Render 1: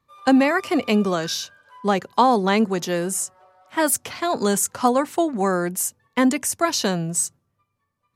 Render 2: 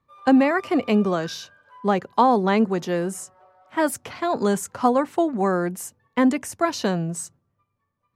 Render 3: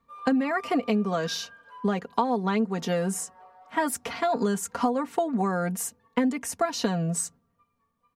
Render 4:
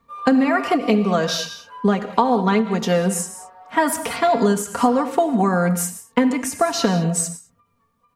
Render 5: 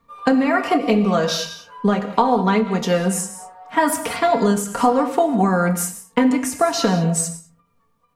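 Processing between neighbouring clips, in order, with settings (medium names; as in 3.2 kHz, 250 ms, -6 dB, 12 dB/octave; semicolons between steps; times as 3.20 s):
treble shelf 3.3 kHz -12 dB
comb 4.3 ms, depth 72%; compression 6:1, threshold -23 dBFS, peak gain reduction 14 dB; trim +1 dB
gated-style reverb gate 230 ms flat, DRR 9 dB; endings held to a fixed fall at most 170 dB/s; trim +7.5 dB
simulated room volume 120 m³, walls furnished, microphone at 0.52 m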